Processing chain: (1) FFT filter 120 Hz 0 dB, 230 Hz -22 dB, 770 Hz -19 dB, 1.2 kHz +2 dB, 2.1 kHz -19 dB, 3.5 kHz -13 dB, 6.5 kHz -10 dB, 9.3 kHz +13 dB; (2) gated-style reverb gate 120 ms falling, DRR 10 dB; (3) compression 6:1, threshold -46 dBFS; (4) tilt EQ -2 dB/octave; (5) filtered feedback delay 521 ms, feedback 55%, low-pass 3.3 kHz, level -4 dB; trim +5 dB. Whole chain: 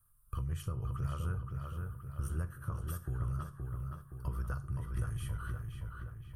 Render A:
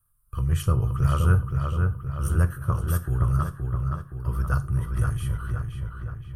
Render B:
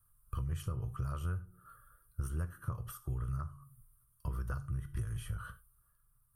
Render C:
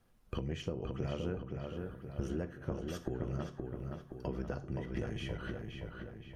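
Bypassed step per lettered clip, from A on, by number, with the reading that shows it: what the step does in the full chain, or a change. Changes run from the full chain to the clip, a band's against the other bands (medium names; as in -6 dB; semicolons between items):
3, mean gain reduction 10.5 dB; 5, momentary loudness spread change +6 LU; 1, 500 Hz band +14.0 dB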